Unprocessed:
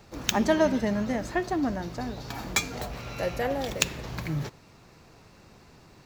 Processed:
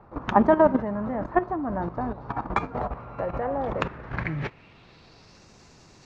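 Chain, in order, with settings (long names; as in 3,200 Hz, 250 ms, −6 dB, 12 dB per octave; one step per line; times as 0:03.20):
output level in coarse steps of 12 dB
low-pass filter sweep 1,100 Hz → 6,500 Hz, 0:03.73–0:05.49
level +6.5 dB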